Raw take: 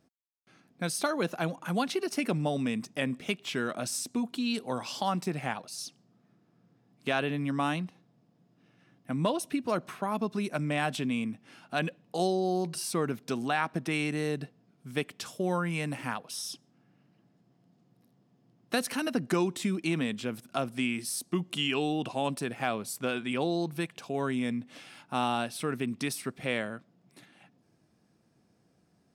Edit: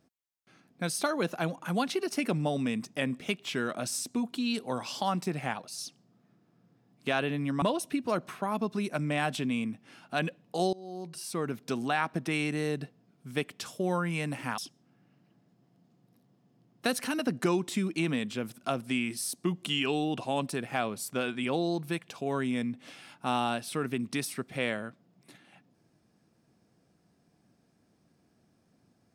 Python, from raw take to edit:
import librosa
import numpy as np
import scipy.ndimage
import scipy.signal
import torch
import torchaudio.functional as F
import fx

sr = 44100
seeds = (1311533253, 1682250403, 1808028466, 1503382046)

y = fx.edit(x, sr, fx.cut(start_s=7.62, length_s=1.6),
    fx.fade_in_from(start_s=12.33, length_s=0.98, floor_db=-23.5),
    fx.cut(start_s=16.18, length_s=0.28), tone=tone)